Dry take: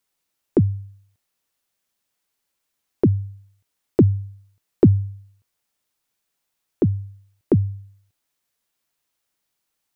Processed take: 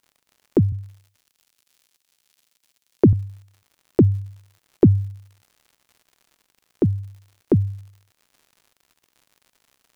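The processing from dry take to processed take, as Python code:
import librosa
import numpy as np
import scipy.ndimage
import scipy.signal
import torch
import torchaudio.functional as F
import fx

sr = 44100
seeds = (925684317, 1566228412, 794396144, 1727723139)

y = fx.dmg_crackle(x, sr, seeds[0], per_s=120.0, level_db=-43.0)
y = fx.band_widen(y, sr, depth_pct=40, at=(0.72, 3.13))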